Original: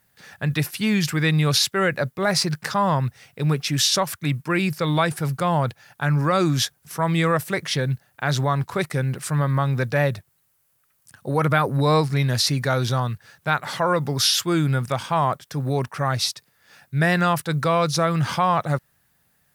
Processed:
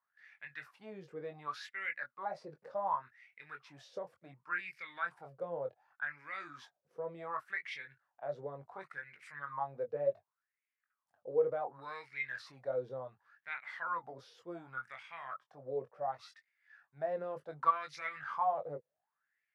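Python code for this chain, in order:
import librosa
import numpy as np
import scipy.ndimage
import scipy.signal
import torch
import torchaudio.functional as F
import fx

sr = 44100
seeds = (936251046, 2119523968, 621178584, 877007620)

y = fx.chorus_voices(x, sr, voices=2, hz=0.11, base_ms=22, depth_ms=1.8, mix_pct=35)
y = fx.wah_lfo(y, sr, hz=0.68, low_hz=470.0, high_hz=2200.0, q=8.7)
y = fx.transient(y, sr, attack_db=8, sustain_db=3, at=(17.16, 18.19), fade=0.02)
y = y * librosa.db_to_amplitude(-1.5)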